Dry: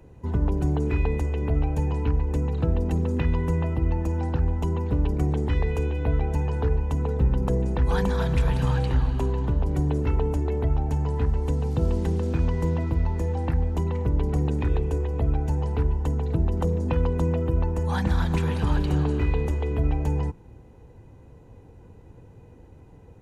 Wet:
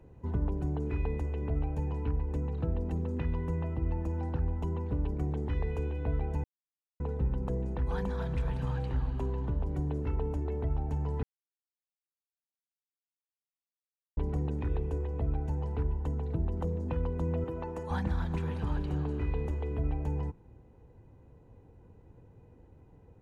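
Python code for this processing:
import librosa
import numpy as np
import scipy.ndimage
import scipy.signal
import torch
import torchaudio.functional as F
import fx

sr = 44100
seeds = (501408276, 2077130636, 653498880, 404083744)

y = fx.highpass(x, sr, hz=450.0, slope=6, at=(17.44, 17.91))
y = fx.edit(y, sr, fx.silence(start_s=6.44, length_s=0.56),
    fx.silence(start_s=11.23, length_s=2.94), tone=tone)
y = fx.high_shelf(y, sr, hz=3200.0, db=-9.0)
y = fx.rider(y, sr, range_db=10, speed_s=0.5)
y = F.gain(torch.from_numpy(y), -8.0).numpy()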